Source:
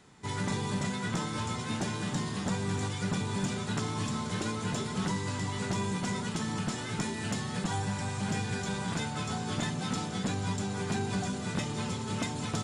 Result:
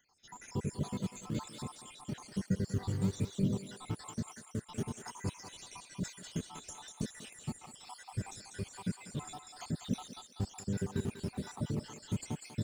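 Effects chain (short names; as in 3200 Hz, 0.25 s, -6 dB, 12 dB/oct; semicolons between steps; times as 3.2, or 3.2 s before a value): random spectral dropouts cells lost 82%; bell 1700 Hz -10.5 dB 2.8 oct; in parallel at -10.5 dB: decimation with a swept rate 24×, swing 160% 1.1 Hz; on the sum: thinning echo 0.194 s, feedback 46%, high-pass 790 Hz, level -5.5 dB; gain +1 dB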